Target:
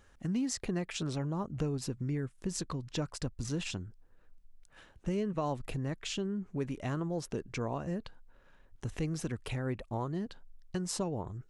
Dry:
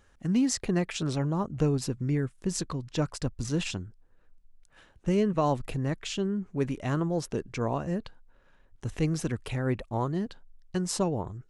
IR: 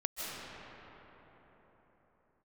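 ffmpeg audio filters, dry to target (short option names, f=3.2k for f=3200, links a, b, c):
-af "acompressor=threshold=-36dB:ratio=2"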